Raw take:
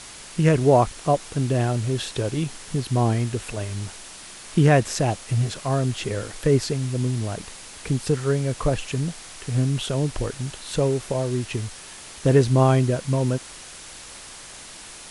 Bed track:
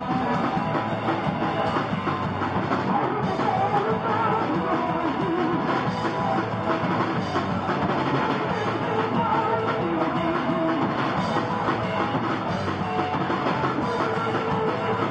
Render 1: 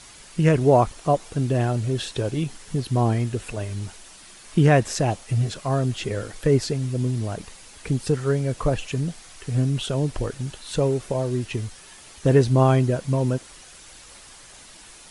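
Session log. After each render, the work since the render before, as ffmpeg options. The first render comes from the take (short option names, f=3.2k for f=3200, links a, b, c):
-af "afftdn=nr=7:nf=-41"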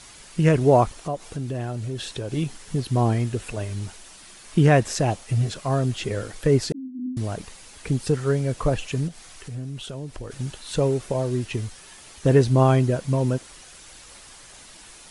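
-filter_complex "[0:a]asettb=1/sr,asplit=3[a][b][c];[a]atrim=end=0.994[d];[b]atrim=start=0.99:end=2.31,asetpts=PTS-STARTPTS,afade=t=in:d=0.004:c=qsin,afade=t=out:st=1.316:d=0.004:c=qsin,acompressor=threshold=-30dB:ratio=2:attack=3.2:release=140:knee=1:detection=peak[e];[c]atrim=start=2.306[f];[d][e]acrossfade=d=0.004:c1=hsin:c2=qsin[g];[g][f]acrossfade=d=0.004:c1=qsin:c2=hsin,asettb=1/sr,asplit=3[h][i][j];[h]atrim=end=6.724[k];[i]atrim=start=6.72:end=7.17,asetpts=PTS-STARTPTS,afade=t=in:d=0.004:c=qsin,afade=t=out:st=0.446:d=0.004:c=qsin,asuperpass=centerf=260:order=20:qfactor=2.3[l];[j]atrim=start=7.166[m];[k][l]acrossfade=d=0.004:c1=hsin:c2=qsin[n];[n][m]acrossfade=d=0.004:c1=qsin:c2=hsin,asplit=3[o][p][q];[o]afade=t=out:st=9.07:d=0.02[r];[p]acompressor=threshold=-38dB:ratio=2:attack=3.2:release=140:knee=1:detection=peak,afade=t=in:st=9.07:d=0.02,afade=t=out:st=10.3:d=0.02[s];[q]afade=t=in:st=10.3:d=0.02[t];[r][s][t]amix=inputs=3:normalize=0"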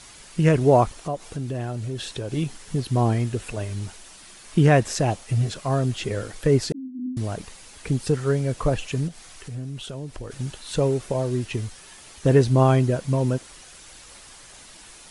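-af anull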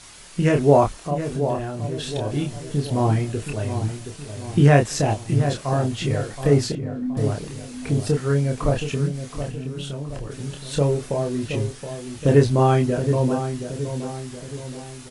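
-filter_complex "[0:a]asplit=2[a][b];[b]adelay=28,volume=-4dB[c];[a][c]amix=inputs=2:normalize=0,asplit=2[d][e];[e]adelay=722,lowpass=f=1.3k:p=1,volume=-8.5dB,asplit=2[f][g];[g]adelay=722,lowpass=f=1.3k:p=1,volume=0.51,asplit=2[h][i];[i]adelay=722,lowpass=f=1.3k:p=1,volume=0.51,asplit=2[j][k];[k]adelay=722,lowpass=f=1.3k:p=1,volume=0.51,asplit=2[l][m];[m]adelay=722,lowpass=f=1.3k:p=1,volume=0.51,asplit=2[n][o];[o]adelay=722,lowpass=f=1.3k:p=1,volume=0.51[p];[d][f][h][j][l][n][p]amix=inputs=7:normalize=0"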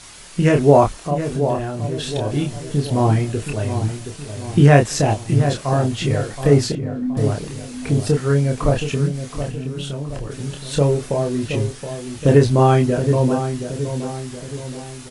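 -af "volume=3.5dB,alimiter=limit=-1dB:level=0:latency=1"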